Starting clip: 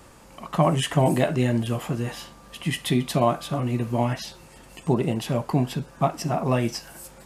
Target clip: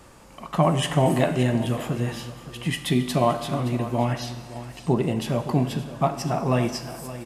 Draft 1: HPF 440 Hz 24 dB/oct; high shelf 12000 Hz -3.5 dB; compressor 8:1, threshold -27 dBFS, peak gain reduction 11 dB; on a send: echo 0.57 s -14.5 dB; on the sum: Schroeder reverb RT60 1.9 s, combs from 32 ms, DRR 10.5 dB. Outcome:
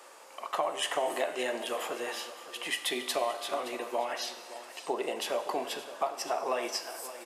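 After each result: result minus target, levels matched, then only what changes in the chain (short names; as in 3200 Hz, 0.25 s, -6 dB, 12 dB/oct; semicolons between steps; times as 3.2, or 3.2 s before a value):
compressor: peak gain reduction +11 dB; 500 Hz band +2.0 dB
remove: compressor 8:1, threshold -27 dBFS, peak gain reduction 11 dB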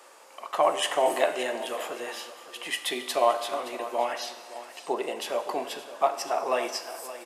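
500 Hz band +3.0 dB
remove: HPF 440 Hz 24 dB/oct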